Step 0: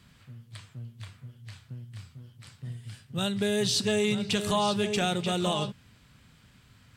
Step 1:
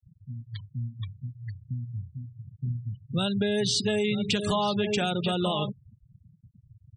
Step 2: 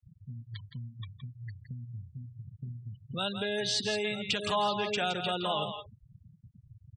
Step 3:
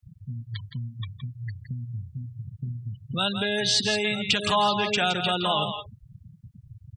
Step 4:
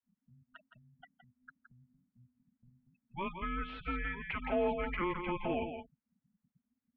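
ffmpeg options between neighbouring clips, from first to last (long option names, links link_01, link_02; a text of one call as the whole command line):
ffmpeg -i in.wav -af "acompressor=threshold=-32dB:ratio=4,afftfilt=real='re*gte(hypot(re,im),0.0112)':imag='im*gte(hypot(re,im),0.0112)':win_size=1024:overlap=0.75,volume=8dB" out.wav
ffmpeg -i in.wav -filter_complex "[0:a]lowpass=frequency=3800:poles=1,acrossover=split=520[link_01][link_02];[link_01]acompressor=threshold=-40dB:ratio=4[link_03];[link_02]aecho=1:1:167:0.398[link_04];[link_03][link_04]amix=inputs=2:normalize=0" out.wav
ffmpeg -i in.wav -af "equalizer=frequency=490:width_type=o:width=0.95:gain=-5,volume=8dB" out.wav
ffmpeg -i in.wav -filter_complex "[0:a]acrossover=split=410[link_01][link_02];[link_01]alimiter=level_in=7dB:limit=-24dB:level=0:latency=1:release=64,volume=-7dB[link_03];[link_03][link_02]amix=inputs=2:normalize=0,asoftclip=type=hard:threshold=-17dB,highpass=frequency=280:width_type=q:width=0.5412,highpass=frequency=280:width_type=q:width=1.307,lowpass=frequency=2500:width_type=q:width=0.5176,lowpass=frequency=2500:width_type=q:width=0.7071,lowpass=frequency=2500:width_type=q:width=1.932,afreqshift=-370,volume=-7.5dB" out.wav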